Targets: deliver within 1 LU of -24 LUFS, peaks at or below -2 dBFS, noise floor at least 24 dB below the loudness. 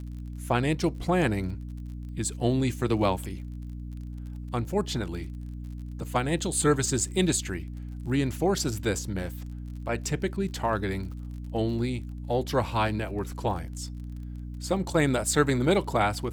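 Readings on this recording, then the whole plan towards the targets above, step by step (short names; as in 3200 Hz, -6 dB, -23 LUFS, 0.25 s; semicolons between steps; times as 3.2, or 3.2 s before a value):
ticks 37/s; hum 60 Hz; harmonics up to 300 Hz; hum level -34 dBFS; loudness -28.0 LUFS; peak -9.0 dBFS; loudness target -24.0 LUFS
-> de-click; de-hum 60 Hz, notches 5; gain +4 dB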